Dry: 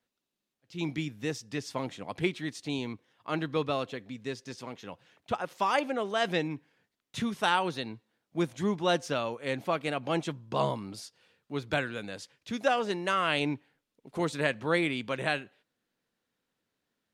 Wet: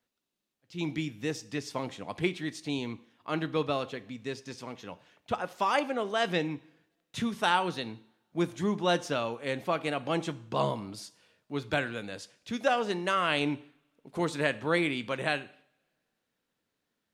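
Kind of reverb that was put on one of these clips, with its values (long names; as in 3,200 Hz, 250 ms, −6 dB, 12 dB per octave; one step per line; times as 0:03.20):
coupled-rooms reverb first 0.59 s, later 2 s, from −27 dB, DRR 14.5 dB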